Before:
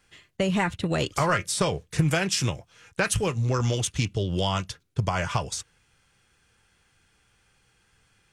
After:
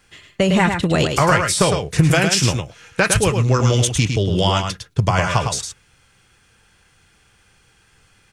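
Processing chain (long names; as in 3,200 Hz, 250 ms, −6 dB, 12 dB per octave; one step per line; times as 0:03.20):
single-tap delay 107 ms −6 dB
level +8 dB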